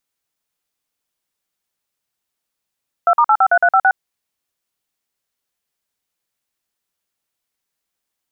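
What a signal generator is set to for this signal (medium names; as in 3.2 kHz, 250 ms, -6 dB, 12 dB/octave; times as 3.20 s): DTMF "2*853356", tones 63 ms, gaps 48 ms, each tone -11.5 dBFS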